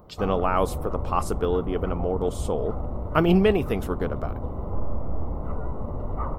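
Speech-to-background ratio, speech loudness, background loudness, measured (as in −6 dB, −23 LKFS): 7.5 dB, −25.5 LKFS, −33.0 LKFS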